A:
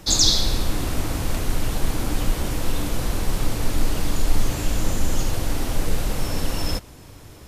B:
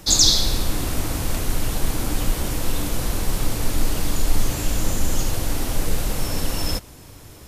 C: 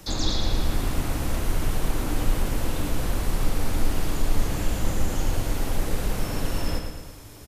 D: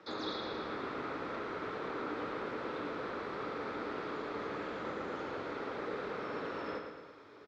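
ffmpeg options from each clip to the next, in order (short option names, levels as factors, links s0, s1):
-af "highshelf=f=6300:g=6"
-filter_complex "[0:a]acrossover=split=270|2900[s0][s1][s2];[s2]acompressor=threshold=0.0141:ratio=6[s3];[s0][s1][s3]amix=inputs=3:normalize=0,aecho=1:1:112|224|336|448|560|672|784:0.501|0.271|0.146|0.0789|0.0426|0.023|0.0124,volume=0.708"
-af "highpass=330,equalizer=f=430:t=q:w=4:g=7,equalizer=f=730:t=q:w=4:g=-4,equalizer=f=1300:t=q:w=4:g=8,equalizer=f=2900:t=q:w=4:g=-9,lowpass=f=3500:w=0.5412,lowpass=f=3500:w=1.3066,volume=0.501"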